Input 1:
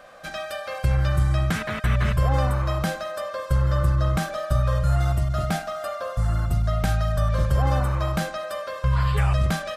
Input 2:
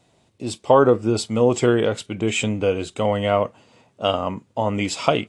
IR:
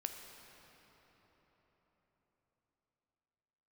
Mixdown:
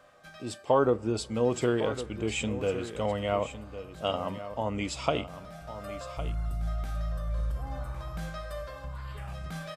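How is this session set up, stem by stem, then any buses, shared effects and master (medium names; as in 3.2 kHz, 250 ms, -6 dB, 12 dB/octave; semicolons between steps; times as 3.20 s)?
-1.0 dB, 0.00 s, send -15.5 dB, echo send -9 dB, peak limiter -21.5 dBFS, peak gain reduction 11 dB; feedback comb 54 Hz, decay 0.57 s, harmonics odd, mix 80%; auto duck -20 dB, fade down 0.80 s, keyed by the second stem
-10.0 dB, 0.00 s, send -18 dB, echo send -11.5 dB, none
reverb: on, RT60 4.8 s, pre-delay 9 ms
echo: delay 1107 ms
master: none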